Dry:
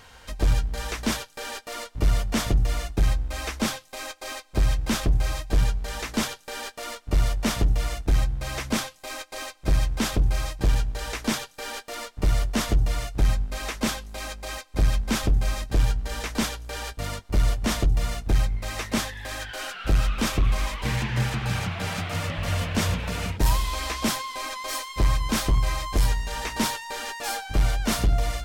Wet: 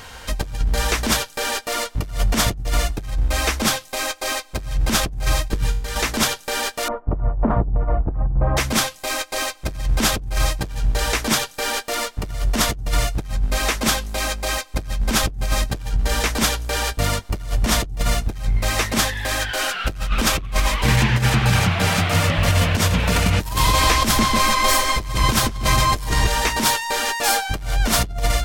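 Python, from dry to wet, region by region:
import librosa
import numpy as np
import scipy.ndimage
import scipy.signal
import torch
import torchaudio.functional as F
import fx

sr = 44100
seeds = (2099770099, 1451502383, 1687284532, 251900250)

y = fx.chain(x, sr, fx.peak_eq(hz=690.0, db=-11.5, octaves=0.28),
    fx.comb_fb(f0_hz=52.0, decay_s=0.43, harmonics='all', damping=0.0, mix_pct=70), at=(5.48, 5.96))
y = fx.chain(y, sr, fx.lowpass(hz=1100.0, slope=24),
    fx.over_compress(threshold_db=-24.0, ratio=-0.5), at=(6.88, 8.57))
y = fx.chain(y, sr, fx.echo_filtered(ms=144, feedback_pct=43, hz=4800.0, wet_db=-5.5),
    fx.band_squash(depth_pct=70), at=(23.16, 26.27))
y = fx.high_shelf(y, sr, hz=8400.0, db=3.5)
y = fx.over_compress(y, sr, threshold_db=-25.0, ratio=-0.5)
y = F.gain(torch.from_numpy(y), 7.5).numpy()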